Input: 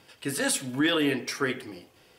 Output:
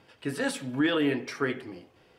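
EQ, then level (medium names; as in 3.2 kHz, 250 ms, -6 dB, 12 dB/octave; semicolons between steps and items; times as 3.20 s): low-pass 2 kHz 6 dB/octave; 0.0 dB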